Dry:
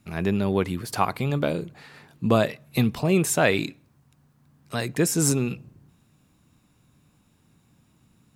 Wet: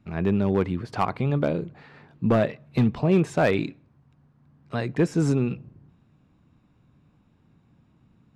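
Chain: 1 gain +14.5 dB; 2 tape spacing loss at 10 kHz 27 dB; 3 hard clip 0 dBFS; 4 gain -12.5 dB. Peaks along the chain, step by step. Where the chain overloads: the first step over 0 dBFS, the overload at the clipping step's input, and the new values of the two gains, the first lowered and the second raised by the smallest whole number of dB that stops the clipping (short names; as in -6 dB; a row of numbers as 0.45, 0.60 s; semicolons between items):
+10.0, +7.5, 0.0, -12.5 dBFS; step 1, 7.5 dB; step 1 +6.5 dB, step 4 -4.5 dB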